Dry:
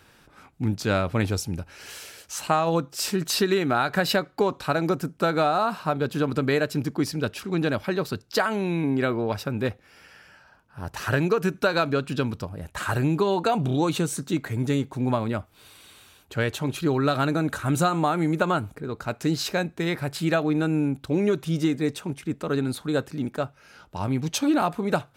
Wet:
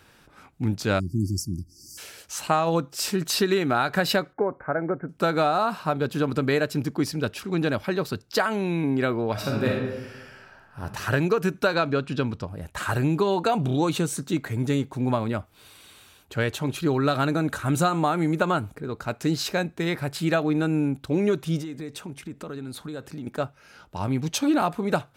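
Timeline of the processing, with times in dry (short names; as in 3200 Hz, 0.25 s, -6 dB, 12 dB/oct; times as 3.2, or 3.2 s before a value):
0.99–1.98 spectral delete 370–4500 Hz
4.33–5.09 rippled Chebyshev low-pass 2200 Hz, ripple 6 dB
9.32–10.81 reverb throw, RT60 1.1 s, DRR -2.5 dB
11.74–12.49 air absorption 56 m
21.61–23.27 compressor 5:1, threshold -32 dBFS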